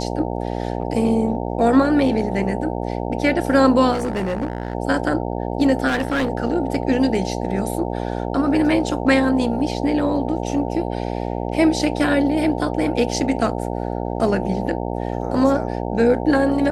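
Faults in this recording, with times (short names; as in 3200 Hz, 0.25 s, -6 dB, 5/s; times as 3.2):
buzz 60 Hz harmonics 15 -25 dBFS
3.93–4.75 clipped -18.5 dBFS
5.87–6.29 clipped -16.5 dBFS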